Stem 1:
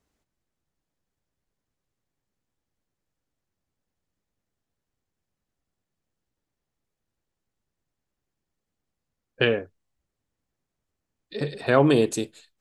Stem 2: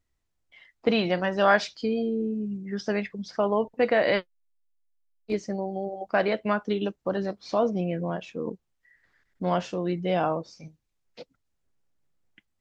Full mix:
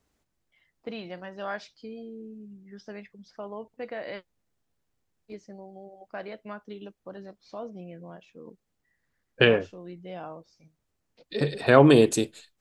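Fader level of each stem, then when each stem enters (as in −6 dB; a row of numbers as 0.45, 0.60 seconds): +2.5, −14.0 decibels; 0.00, 0.00 seconds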